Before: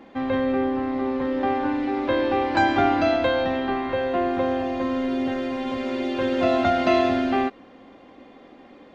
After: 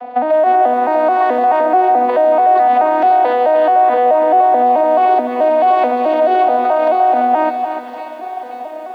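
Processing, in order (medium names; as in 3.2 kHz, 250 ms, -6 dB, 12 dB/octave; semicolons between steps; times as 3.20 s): vocoder on a broken chord major triad, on B3, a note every 216 ms; 0.62–1.61 s: tilt EQ +2.5 dB/octave; feedback echo behind a high-pass 531 ms, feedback 55%, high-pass 2.3 kHz, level -16.5 dB; compression 10:1, threshold -27 dBFS, peak gain reduction 12.5 dB; resonant high-pass 690 Hz, resonance Q 4.9; treble shelf 4.8 kHz -11.5 dB; reverberation RT60 1.1 s, pre-delay 3 ms, DRR 18.5 dB; loudness maximiser +25.5 dB; bit-crushed delay 297 ms, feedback 35%, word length 7-bit, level -9 dB; trim -5.5 dB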